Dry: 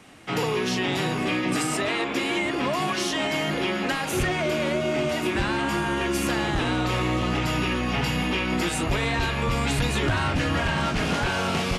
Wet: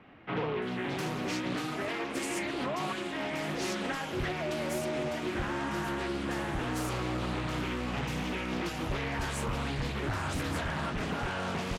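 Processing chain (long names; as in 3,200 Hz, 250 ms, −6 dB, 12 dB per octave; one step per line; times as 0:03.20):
speech leveller within 4 dB 0.5 s
multiband delay without the direct sound lows, highs 620 ms, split 3,000 Hz
highs frequency-modulated by the lows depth 0.49 ms
level −8 dB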